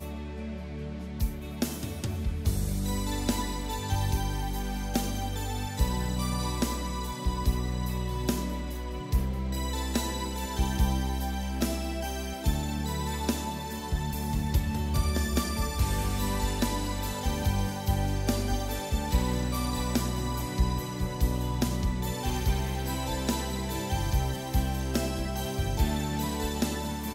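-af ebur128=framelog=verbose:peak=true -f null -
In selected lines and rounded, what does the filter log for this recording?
Integrated loudness:
  I:         -30.7 LUFS
  Threshold: -40.7 LUFS
Loudness range:
  LRA:         2.1 LU
  Threshold: -50.6 LUFS
  LRA low:   -31.6 LUFS
  LRA high:  -29.5 LUFS
True peak:
  Peak:      -11.9 dBFS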